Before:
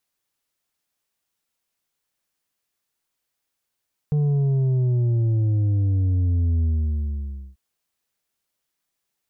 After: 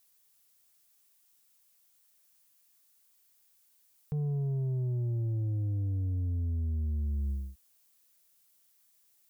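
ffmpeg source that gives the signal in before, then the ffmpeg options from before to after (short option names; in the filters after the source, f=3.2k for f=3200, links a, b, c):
-f lavfi -i "aevalsrc='0.126*clip((3.44-t)/0.93,0,1)*tanh(1.88*sin(2*PI*150*3.44/log(65/150)*(exp(log(65/150)*t/3.44)-1)))/tanh(1.88)':d=3.44:s=44100"
-af "alimiter=level_in=5dB:limit=-24dB:level=0:latency=1,volume=-5dB,crystalizer=i=2.5:c=0"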